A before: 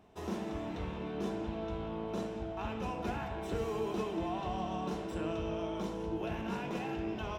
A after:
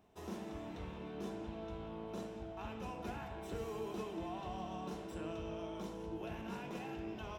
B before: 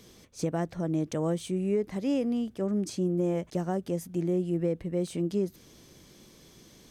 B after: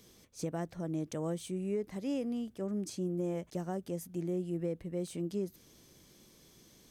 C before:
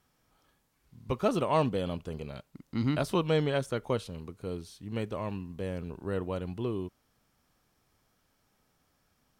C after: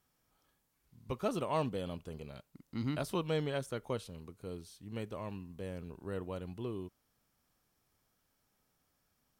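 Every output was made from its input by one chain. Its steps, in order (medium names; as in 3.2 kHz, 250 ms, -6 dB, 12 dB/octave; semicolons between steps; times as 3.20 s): treble shelf 8.2 kHz +7.5 dB; trim -7 dB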